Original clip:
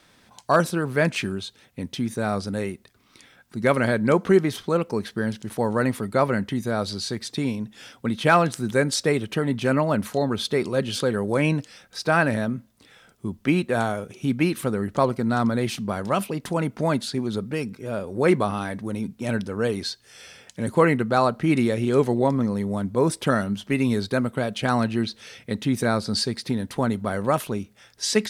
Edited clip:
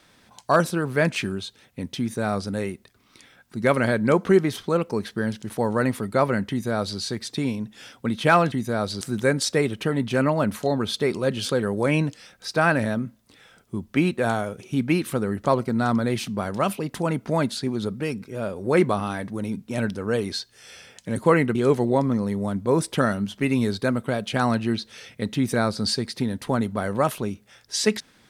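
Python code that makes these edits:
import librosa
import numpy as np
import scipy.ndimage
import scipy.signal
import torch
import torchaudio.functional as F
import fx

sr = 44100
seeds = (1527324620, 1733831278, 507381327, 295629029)

y = fx.edit(x, sr, fx.duplicate(start_s=6.5, length_s=0.49, to_s=8.52),
    fx.cut(start_s=21.06, length_s=0.78), tone=tone)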